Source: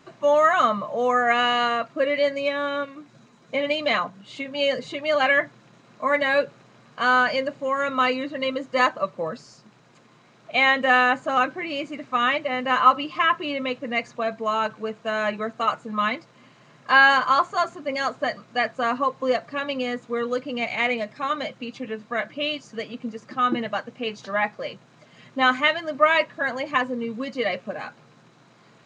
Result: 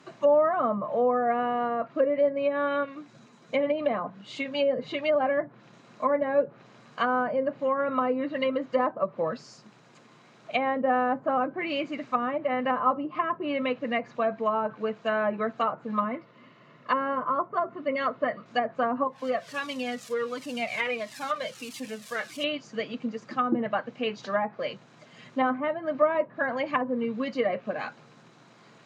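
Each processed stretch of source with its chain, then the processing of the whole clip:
0:16.04–0:18.46: low-pass filter 3,200 Hz + notch comb filter 800 Hz
0:19.07–0:22.44: spike at every zero crossing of −26.5 dBFS + flanger whose copies keep moving one way falling 1.5 Hz
whole clip: treble cut that deepens with the level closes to 720 Hz, closed at −19 dBFS; high-pass filter 120 Hz

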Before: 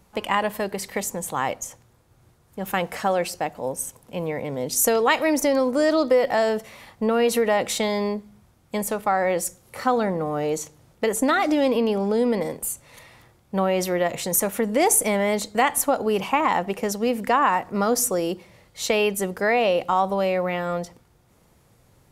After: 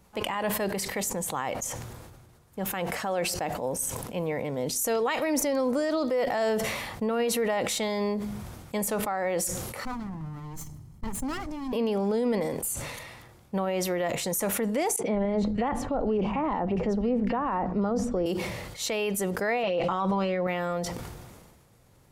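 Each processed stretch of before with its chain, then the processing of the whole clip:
0:09.85–0:11.73: lower of the sound and its delayed copy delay 0.95 ms + drawn EQ curve 170 Hz 0 dB, 490 Hz −13 dB, 3,500 Hz −18 dB, 6,200 Hz −12 dB
0:14.96–0:18.26: low-pass filter 5,000 Hz + spectral tilt −4 dB per octave + three-band delay without the direct sound highs, mids, lows 30/170 ms, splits 150/2,100 Hz
0:19.63–0:20.47: high-frequency loss of the air 98 metres + comb filter 6 ms, depth 67% + envelope flattener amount 100%
whole clip: brickwall limiter −17 dBFS; level that may fall only so fast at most 35 dB per second; level −2.5 dB

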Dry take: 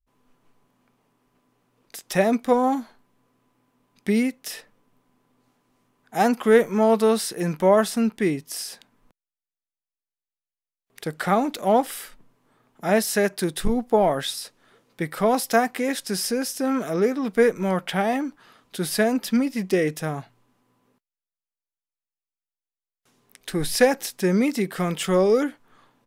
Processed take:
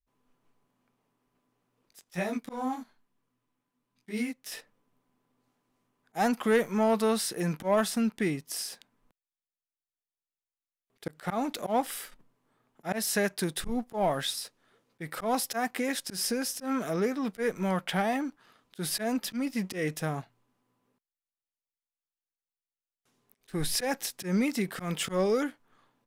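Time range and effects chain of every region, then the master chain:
0:02.04–0:04.52: parametric band 570 Hz −5 dB 1.7 octaves + micro pitch shift up and down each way 32 cents
whole clip: dynamic equaliser 400 Hz, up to −5 dB, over −28 dBFS, Q 0.98; volume swells 115 ms; leveller curve on the samples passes 1; level −7 dB

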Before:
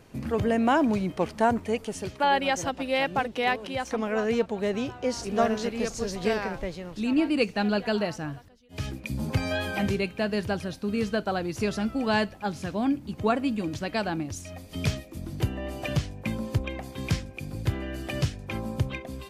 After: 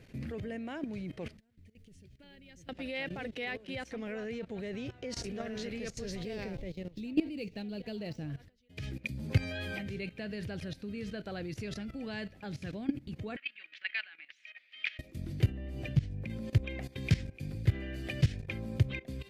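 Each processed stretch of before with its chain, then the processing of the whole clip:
0:01.37–0:02.69: guitar amp tone stack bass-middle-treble 10-0-1 + compressor whose output falls as the input rises −51 dBFS, ratio −0.5 + bit-depth reduction 12 bits, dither none
0:06.23–0:08.30: running median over 5 samples + parametric band 1,500 Hz −11.5 dB 1.2 octaves
0:13.36–0:14.99: flat-topped band-pass 2,200 Hz, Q 1.2 + parametric band 2,400 Hz +4.5 dB 1.4 octaves
0:15.51–0:16.30: low-shelf EQ 320 Hz +11 dB + downward compressor 3 to 1, threshold −25 dBFS
whole clip: low-shelf EQ 300 Hz +8 dB; output level in coarse steps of 17 dB; graphic EQ with 10 bands 125 Hz +3 dB, 500 Hz +4 dB, 1,000 Hz −8 dB, 2,000 Hz +10 dB, 4,000 Hz +5 dB; level −6.5 dB

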